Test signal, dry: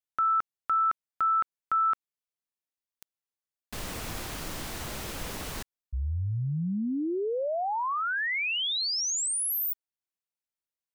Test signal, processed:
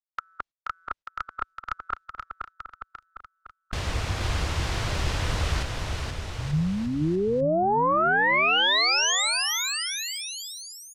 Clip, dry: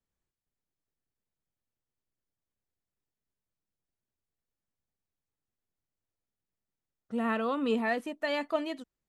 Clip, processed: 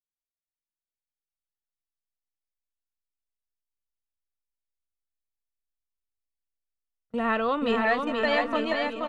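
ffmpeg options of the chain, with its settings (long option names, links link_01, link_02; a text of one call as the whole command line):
ffmpeg -i in.wav -af "asubboost=boost=12:cutoff=65,agate=range=-30dB:threshold=-38dB:ratio=16:release=135:detection=rms,afftfilt=real='re*lt(hypot(re,im),0.501)':imag='im*lt(hypot(re,im),0.501)':win_size=1024:overlap=0.75,lowpass=5500,aecho=1:1:480|888|1235|1530|1780:0.631|0.398|0.251|0.158|0.1,aeval=exprs='0.133*(cos(1*acos(clip(val(0)/0.133,-1,1)))-cos(1*PI/2))+0.00473*(cos(2*acos(clip(val(0)/0.133,-1,1)))-cos(2*PI/2))':channel_layout=same,volume=6.5dB" out.wav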